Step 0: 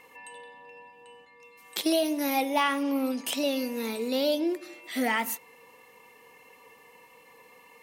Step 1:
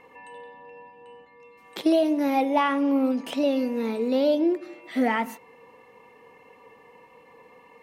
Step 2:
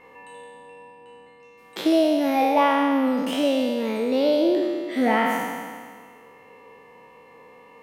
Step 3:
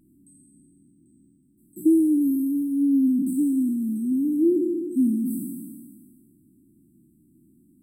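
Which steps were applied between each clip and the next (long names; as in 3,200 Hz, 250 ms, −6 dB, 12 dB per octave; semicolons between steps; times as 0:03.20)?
low-pass filter 1,000 Hz 6 dB per octave; level +6 dB
peak hold with a decay on every bin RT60 1.83 s
linear-phase brick-wall band-stop 370–7,600 Hz; level +3 dB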